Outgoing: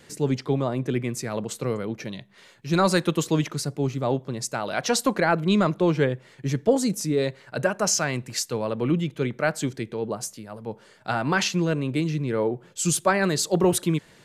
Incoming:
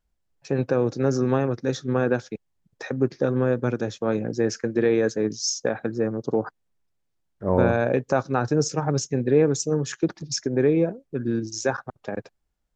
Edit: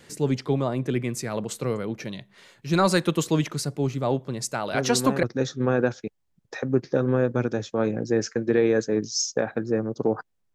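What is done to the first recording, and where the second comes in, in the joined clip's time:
outgoing
4.74 add incoming from 1.02 s 0.49 s -6.5 dB
5.23 switch to incoming from 1.51 s

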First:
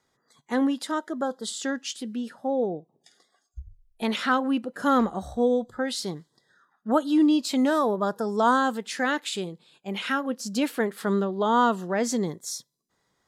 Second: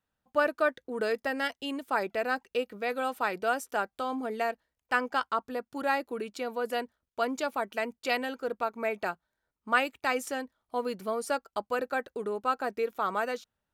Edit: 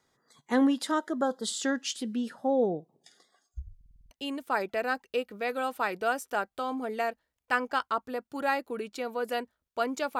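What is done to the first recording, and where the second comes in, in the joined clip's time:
first
3.76 stutter in place 0.05 s, 7 plays
4.11 switch to second from 1.52 s

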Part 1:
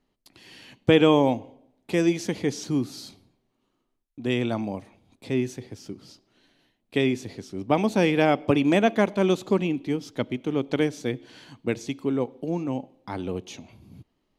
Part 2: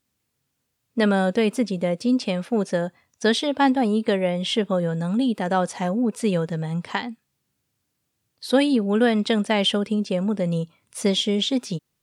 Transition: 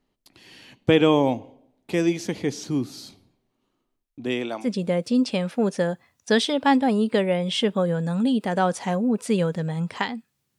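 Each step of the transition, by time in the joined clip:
part 1
4.24–4.7 HPF 150 Hz -> 660 Hz
4.65 switch to part 2 from 1.59 s, crossfade 0.10 s

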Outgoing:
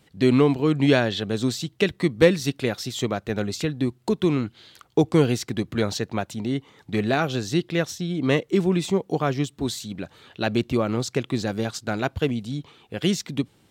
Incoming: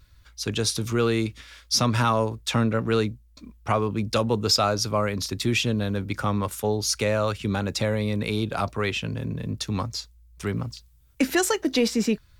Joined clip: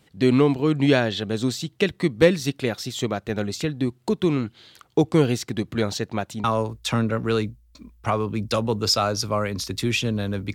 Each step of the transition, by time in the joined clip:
outgoing
6.44 switch to incoming from 2.06 s

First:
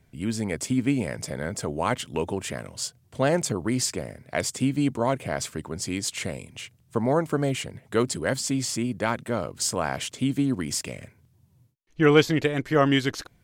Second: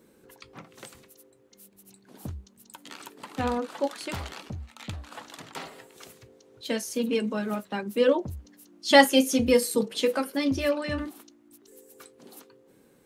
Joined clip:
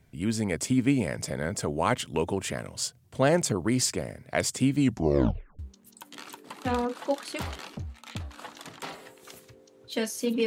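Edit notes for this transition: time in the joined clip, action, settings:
first
4.8 tape stop 0.79 s
5.59 switch to second from 2.32 s

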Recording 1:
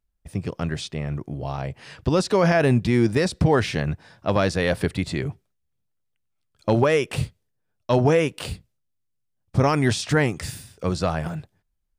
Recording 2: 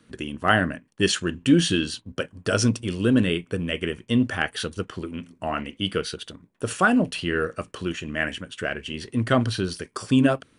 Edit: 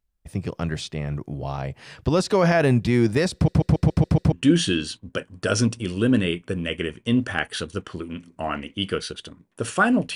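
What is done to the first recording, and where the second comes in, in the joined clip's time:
recording 1
3.34 stutter in place 0.14 s, 7 plays
4.32 switch to recording 2 from 1.35 s

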